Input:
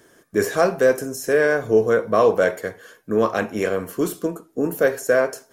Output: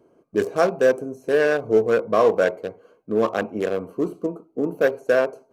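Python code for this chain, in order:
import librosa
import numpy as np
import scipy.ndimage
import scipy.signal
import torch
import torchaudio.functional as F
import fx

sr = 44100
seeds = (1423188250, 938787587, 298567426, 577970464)

y = fx.wiener(x, sr, points=25)
y = fx.low_shelf(y, sr, hz=100.0, db=-11.5)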